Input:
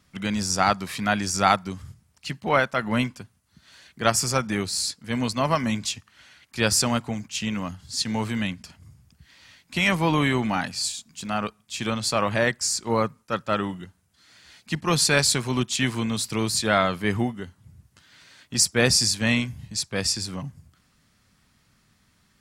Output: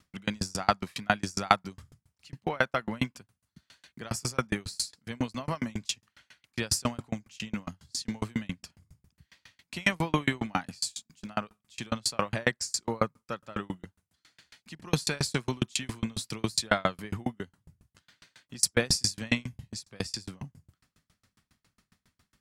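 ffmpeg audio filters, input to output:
-af "aeval=exprs='val(0)*pow(10,-36*if(lt(mod(7.3*n/s,1),2*abs(7.3)/1000),1-mod(7.3*n/s,1)/(2*abs(7.3)/1000),(mod(7.3*n/s,1)-2*abs(7.3)/1000)/(1-2*abs(7.3)/1000))/20)':c=same,volume=1.26"

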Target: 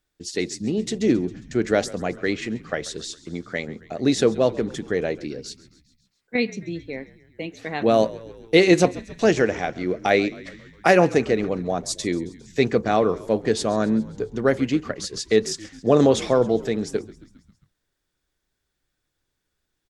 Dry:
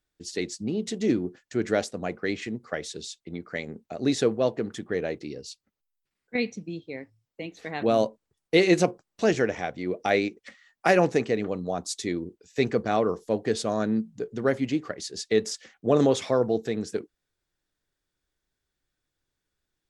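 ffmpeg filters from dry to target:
-filter_complex "[0:a]asplit=6[s0][s1][s2][s3][s4][s5];[s1]adelay=135,afreqshift=-58,volume=0.106[s6];[s2]adelay=270,afreqshift=-116,volume=0.0653[s7];[s3]adelay=405,afreqshift=-174,volume=0.0407[s8];[s4]adelay=540,afreqshift=-232,volume=0.0251[s9];[s5]adelay=675,afreqshift=-290,volume=0.0157[s10];[s0][s6][s7][s8][s9][s10]amix=inputs=6:normalize=0,volume=1.68"

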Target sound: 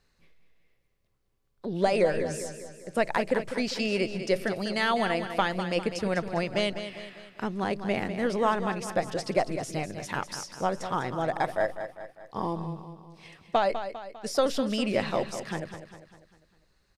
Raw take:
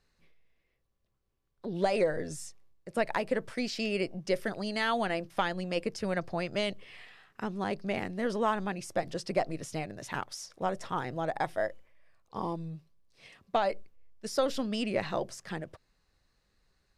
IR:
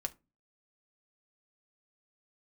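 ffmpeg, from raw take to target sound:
-af "aecho=1:1:200|400|600|800|1000:0.316|0.155|0.0759|0.0372|0.0182,volume=1.5"

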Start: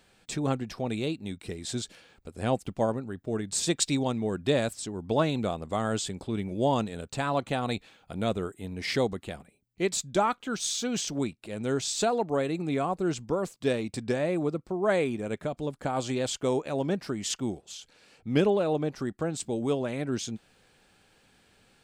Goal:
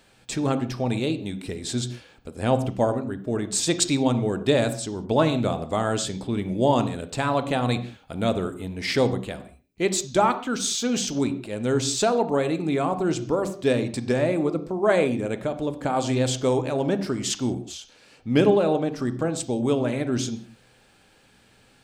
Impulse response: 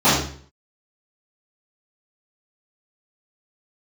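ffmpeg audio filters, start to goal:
-filter_complex "[0:a]asplit=2[s0][s1];[1:a]atrim=start_sample=2205,afade=t=out:st=0.23:d=0.01,atrim=end_sample=10584,asetrate=40131,aresample=44100[s2];[s1][s2]afir=irnorm=-1:irlink=0,volume=0.0188[s3];[s0][s3]amix=inputs=2:normalize=0,volume=1.68"

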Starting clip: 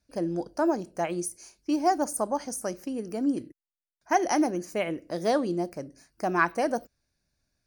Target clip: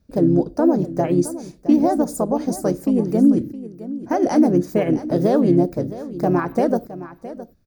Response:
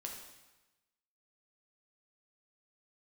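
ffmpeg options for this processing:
-filter_complex "[0:a]asplit=2[s0][s1];[s1]asetrate=35002,aresample=44100,atempo=1.25992,volume=0.501[s2];[s0][s2]amix=inputs=2:normalize=0,alimiter=limit=0.112:level=0:latency=1:release=123,tiltshelf=f=720:g=8.5,aexciter=amount=2.5:drive=4.8:freq=12000,asplit=2[s3][s4];[s4]aecho=0:1:665:0.178[s5];[s3][s5]amix=inputs=2:normalize=0,volume=2.51"

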